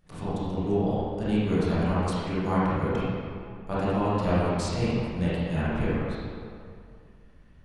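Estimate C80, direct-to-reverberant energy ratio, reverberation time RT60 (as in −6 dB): −2.0 dB, −11.5 dB, 2.3 s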